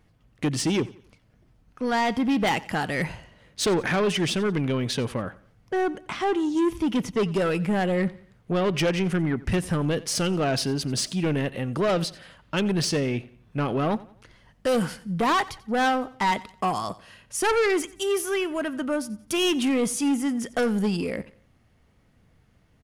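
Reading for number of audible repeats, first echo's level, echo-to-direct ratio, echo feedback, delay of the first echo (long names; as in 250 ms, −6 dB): 2, −20.0 dB, −19.5 dB, 38%, 89 ms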